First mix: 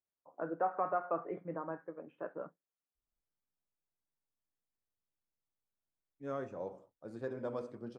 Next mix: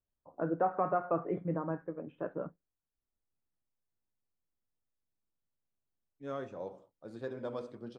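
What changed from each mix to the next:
first voice: remove high-pass 660 Hz 6 dB/octave; master: add peaking EQ 3.6 kHz +8 dB 0.72 oct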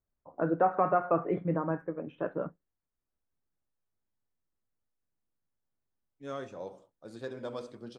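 first voice +4.0 dB; master: add treble shelf 3.2 kHz +11.5 dB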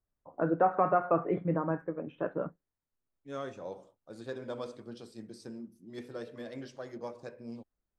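second voice: entry -2.95 s

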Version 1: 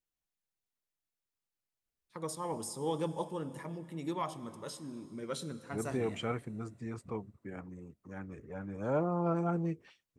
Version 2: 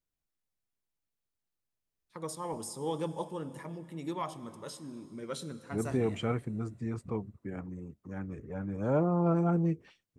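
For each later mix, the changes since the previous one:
second voice: add bass shelf 410 Hz +7 dB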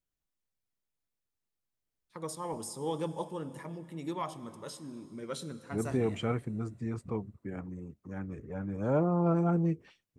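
no change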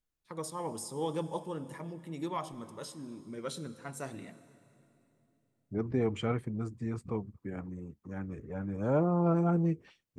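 first voice: entry -1.85 s

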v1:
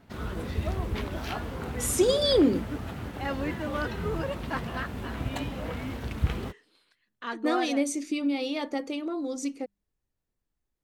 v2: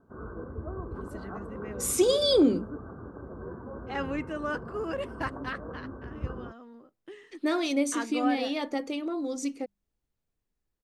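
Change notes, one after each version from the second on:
first voice: entry +0.70 s; background: add rippled Chebyshev low-pass 1.6 kHz, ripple 9 dB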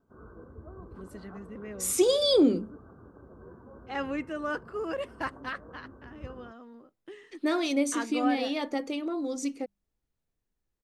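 background -9.0 dB

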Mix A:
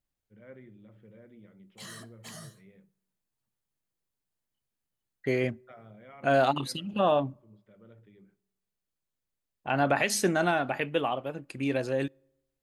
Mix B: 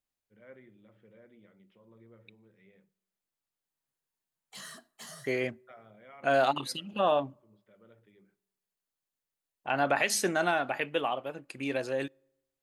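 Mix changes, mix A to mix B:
background: entry +2.75 s; master: add bass shelf 250 Hz -11.5 dB

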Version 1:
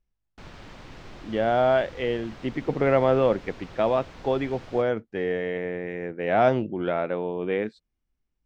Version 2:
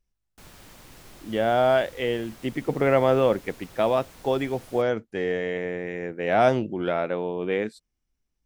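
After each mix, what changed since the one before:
background -6.0 dB; master: remove distance through air 170 m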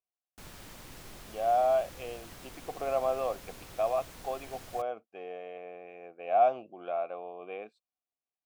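speech: add vowel filter a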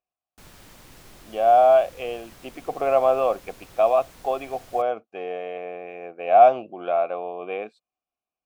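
speech +10.5 dB

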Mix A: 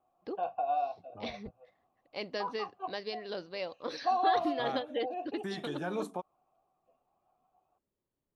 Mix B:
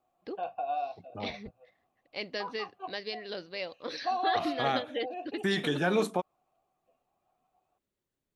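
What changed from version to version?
second voice +9.0 dB; master: add graphic EQ 1/2/4 kHz -4/+5/+3 dB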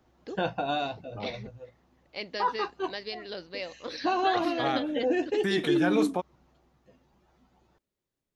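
background: remove vowel filter a; master: add peaking EQ 5.1 kHz +2.5 dB 0.33 oct

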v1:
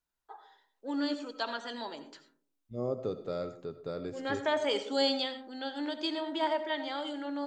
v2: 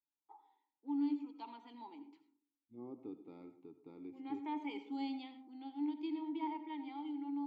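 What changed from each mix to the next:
second voice: add distance through air 78 m; master: add vowel filter u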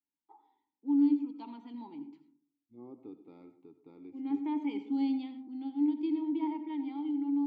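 first voice: remove high-pass 490 Hz 12 dB/octave

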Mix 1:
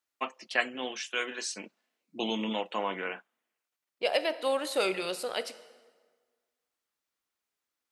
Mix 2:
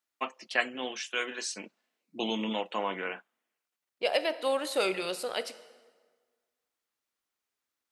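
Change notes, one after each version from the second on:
no change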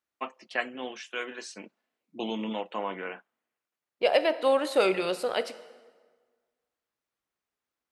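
second voice +6.0 dB; master: add treble shelf 3 kHz -10 dB

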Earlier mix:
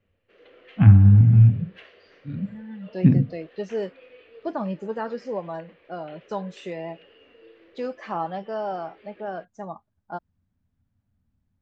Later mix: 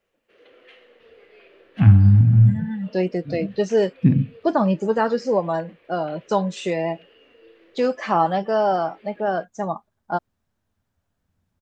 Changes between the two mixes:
first voice: entry +1.00 s; second voice +9.5 dB; master: remove distance through air 77 m

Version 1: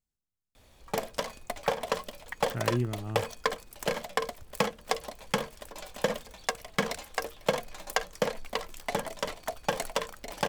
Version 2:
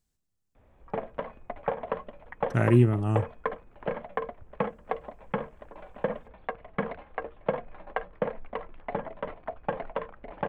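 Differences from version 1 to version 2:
speech +10.0 dB; background: add Gaussian low-pass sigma 4.4 samples

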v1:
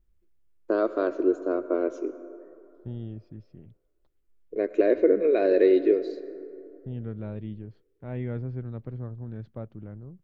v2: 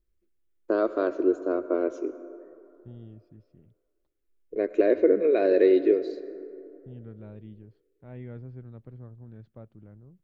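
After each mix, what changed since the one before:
second voice -8.5 dB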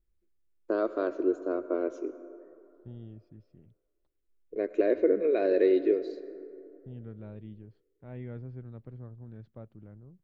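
first voice -4.0 dB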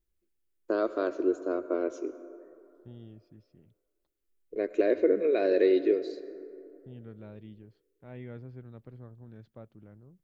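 second voice: add bass shelf 160 Hz -6 dB; master: add treble shelf 3.2 kHz +9 dB

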